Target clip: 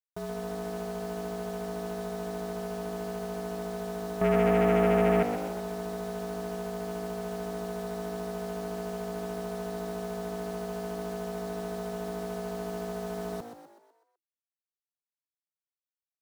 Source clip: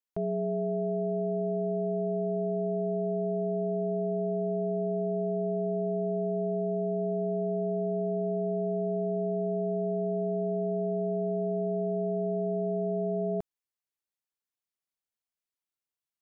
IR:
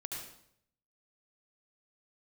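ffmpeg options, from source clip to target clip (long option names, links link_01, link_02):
-filter_complex "[0:a]asettb=1/sr,asplit=3[link_01][link_02][link_03];[link_01]atrim=end=4.214[link_04];[link_02]atrim=start=4.21:end=5.23,asetpts=PTS-STARTPTS,afade=type=in:duration=0.004:curve=qsin,afade=type=out:start_time=1.016:duration=0.004:curve=qsin,acontrast=64[link_05];[link_03]atrim=start=5.226[link_06];[link_04][link_05]acrossfade=duration=0.004:curve1=hsin:curve2=qsin[link_07];[link_07][link_06]acrossfade=duration=0.004:curve1=qsin:curve2=hsin,aeval=exprs='0.168*(cos(1*acos(clip(val(0)/0.168,-1,1)))-cos(1*PI/2))+0.0531*(cos(3*acos(clip(val(0)/0.168,-1,1)))-cos(3*PI/2))+0.00211*(cos(5*acos(clip(val(0)/0.168,-1,1)))-cos(5*PI/2))':channel_layout=same,acrusher=bits=8:mix=0:aa=0.000001,aeval=exprs='0.282*sin(PI/2*2.24*val(0)/0.282)':channel_layout=same,asplit=7[link_08][link_09][link_10][link_11][link_12][link_13][link_14];[link_09]adelay=125,afreqshift=53,volume=-9dB[link_15];[link_10]adelay=250,afreqshift=106,volume=-15.2dB[link_16];[link_11]adelay=375,afreqshift=159,volume=-21.4dB[link_17];[link_12]adelay=500,afreqshift=212,volume=-27.6dB[link_18];[link_13]adelay=625,afreqshift=265,volume=-33.8dB[link_19];[link_14]adelay=750,afreqshift=318,volume=-40dB[link_20];[link_08][link_15][link_16][link_17][link_18][link_19][link_20]amix=inputs=7:normalize=0,volume=-4dB"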